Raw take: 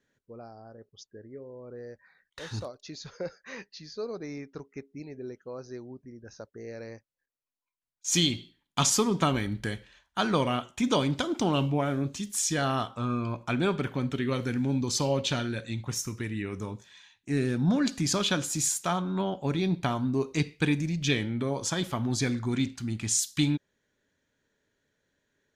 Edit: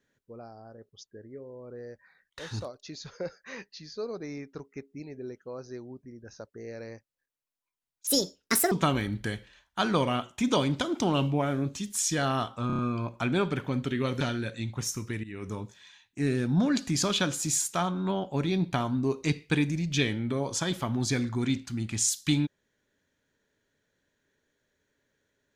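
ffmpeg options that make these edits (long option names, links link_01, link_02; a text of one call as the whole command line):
ffmpeg -i in.wav -filter_complex "[0:a]asplit=9[link_01][link_02][link_03][link_04][link_05][link_06][link_07][link_08][link_09];[link_01]atrim=end=8.074[link_10];[link_02]atrim=start=8.07:end=9.11,asetpts=PTS-STARTPTS,asetrate=71001,aresample=44100[link_11];[link_03]atrim=start=9.106:end=13.092[link_12];[link_04]atrim=start=13.058:end=13.092[link_13];[link_05]atrim=start=13.058:end=13.092[link_14];[link_06]atrim=start=13.058:end=13.092[link_15];[link_07]atrim=start=13.058:end=14.482[link_16];[link_08]atrim=start=15.308:end=16.34,asetpts=PTS-STARTPTS,afade=type=out:start_time=1.028:duration=0.004:curve=hsin:silence=0.16788[link_17];[link_09]atrim=start=16.34,asetpts=PTS-STARTPTS,afade=type=in:duration=0.26:silence=0.16788[link_18];[link_10][link_11]acrossfade=duration=0.004:curve1=hsin:curve2=hsin[link_19];[link_19][link_12]acrossfade=duration=0.004:curve1=hsin:curve2=hsin[link_20];[link_20][link_13]acrossfade=duration=0.004:curve1=hsin:curve2=hsin[link_21];[link_21][link_14]acrossfade=duration=0.004:curve1=hsin:curve2=hsin[link_22];[link_22][link_15]acrossfade=duration=0.004:curve1=hsin:curve2=hsin[link_23];[link_23][link_16]acrossfade=duration=0.004:curve1=hsin:curve2=hsin[link_24];[link_17][link_18]concat=n=2:v=0:a=1[link_25];[link_24][link_25]acrossfade=duration=0.004:curve1=hsin:curve2=hsin" out.wav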